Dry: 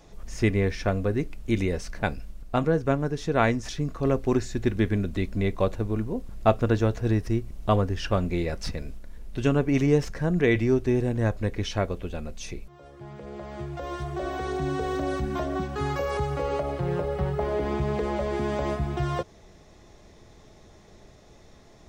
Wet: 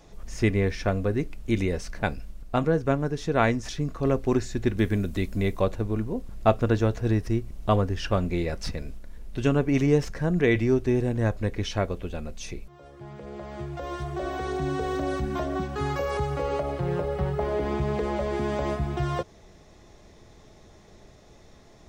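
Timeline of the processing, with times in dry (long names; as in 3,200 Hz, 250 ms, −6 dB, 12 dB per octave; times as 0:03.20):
0:04.78–0:05.60: high-shelf EQ 8,200 Hz +11.5 dB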